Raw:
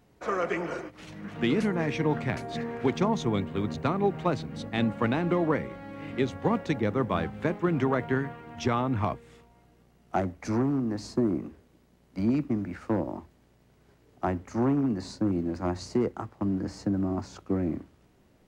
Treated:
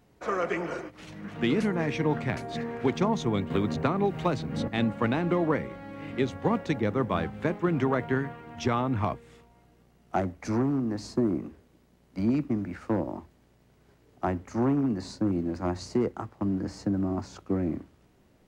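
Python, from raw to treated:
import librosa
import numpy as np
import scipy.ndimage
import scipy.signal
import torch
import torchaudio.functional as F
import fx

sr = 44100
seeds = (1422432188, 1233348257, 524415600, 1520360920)

y = fx.band_squash(x, sr, depth_pct=100, at=(3.5, 4.68))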